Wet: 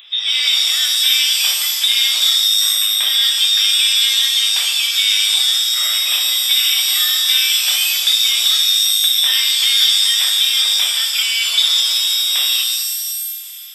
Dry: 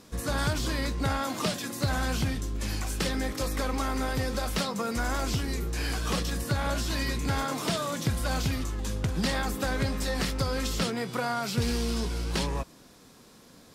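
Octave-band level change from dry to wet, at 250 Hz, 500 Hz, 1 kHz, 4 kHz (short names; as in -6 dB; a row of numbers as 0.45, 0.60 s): under -30 dB, under -15 dB, -4.0 dB, +26.5 dB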